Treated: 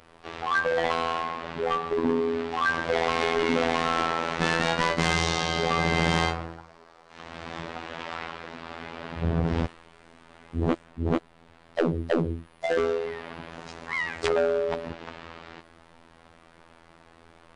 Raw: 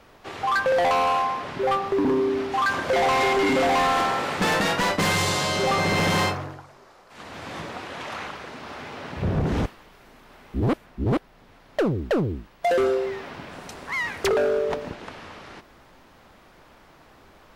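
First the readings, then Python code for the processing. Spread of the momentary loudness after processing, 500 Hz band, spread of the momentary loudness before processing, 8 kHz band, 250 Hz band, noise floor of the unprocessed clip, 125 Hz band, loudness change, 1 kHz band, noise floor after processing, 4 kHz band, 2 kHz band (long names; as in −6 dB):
16 LU, −3.0 dB, 17 LU, −6.0 dB, −2.5 dB, −53 dBFS, −2.5 dB, −3.5 dB, −4.5 dB, −56 dBFS, −2.5 dB, −2.0 dB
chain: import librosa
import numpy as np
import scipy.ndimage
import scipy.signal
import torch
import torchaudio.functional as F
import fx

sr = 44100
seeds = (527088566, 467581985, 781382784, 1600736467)

y = fx.freq_compress(x, sr, knee_hz=3700.0, ratio=1.5)
y = fx.robotise(y, sr, hz=83.0)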